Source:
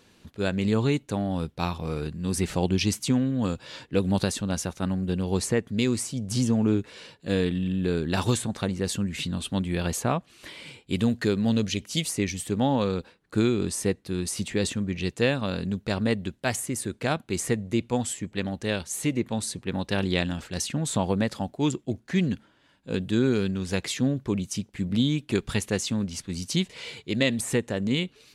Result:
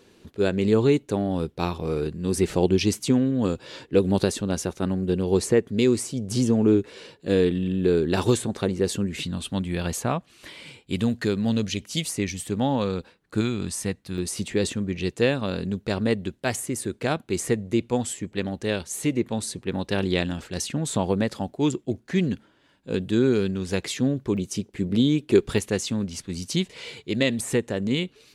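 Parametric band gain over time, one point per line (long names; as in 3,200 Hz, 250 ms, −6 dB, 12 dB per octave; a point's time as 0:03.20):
parametric band 390 Hz 0.84 octaves
+9 dB
from 0:09.23 0 dB
from 0:13.41 −7 dB
from 0:14.18 +4.5 dB
from 0:24.37 +11 dB
from 0:25.58 +3.5 dB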